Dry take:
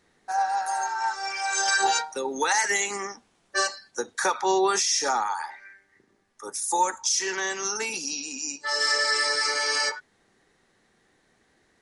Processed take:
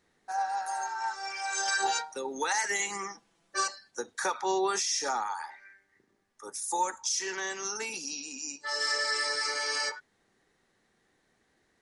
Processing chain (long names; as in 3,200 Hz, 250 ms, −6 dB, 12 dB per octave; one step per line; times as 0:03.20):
0:02.79–0:03.68: comb filter 6 ms, depth 69%
level −6 dB